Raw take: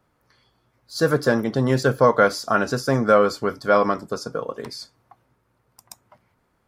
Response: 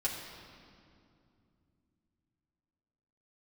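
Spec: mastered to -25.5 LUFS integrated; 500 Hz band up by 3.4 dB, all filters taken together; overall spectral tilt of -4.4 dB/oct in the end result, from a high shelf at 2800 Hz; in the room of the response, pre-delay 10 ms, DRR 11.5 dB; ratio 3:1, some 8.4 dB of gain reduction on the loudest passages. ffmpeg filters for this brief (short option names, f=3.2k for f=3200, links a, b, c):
-filter_complex "[0:a]equalizer=f=500:t=o:g=3.5,highshelf=f=2.8k:g=7.5,acompressor=threshold=-19dB:ratio=3,asplit=2[a][b];[1:a]atrim=start_sample=2205,adelay=10[c];[b][c]afir=irnorm=-1:irlink=0,volume=-16dB[d];[a][d]amix=inputs=2:normalize=0,volume=-2dB"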